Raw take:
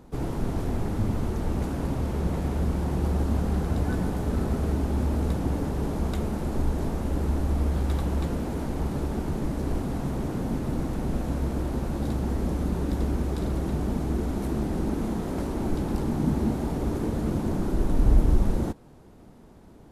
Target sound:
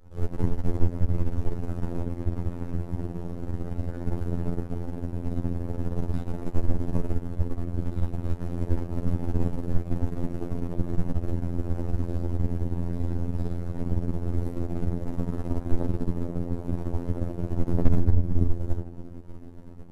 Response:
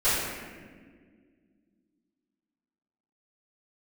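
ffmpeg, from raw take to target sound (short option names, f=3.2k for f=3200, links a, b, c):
-filter_complex "[0:a]acompressor=threshold=-39dB:ratio=4,lowshelf=f=270:g=9[a];[1:a]atrim=start_sample=2205,asetrate=48510,aresample=44100[b];[a][b]afir=irnorm=-1:irlink=0,aeval=exprs='1.06*(cos(1*acos(clip(val(0)/1.06,-1,1)))-cos(1*PI/2))+0.266*(cos(3*acos(clip(val(0)/1.06,-1,1)))-cos(3*PI/2))+0.119*(cos(6*acos(clip(val(0)/1.06,-1,1)))-cos(6*PI/2))+0.015*(cos(8*acos(clip(val(0)/1.06,-1,1)))-cos(8*PI/2))':c=same,afftfilt=real='hypot(re,im)*cos(PI*b)':imag='0':win_size=2048:overlap=0.75,volume=-1.5dB"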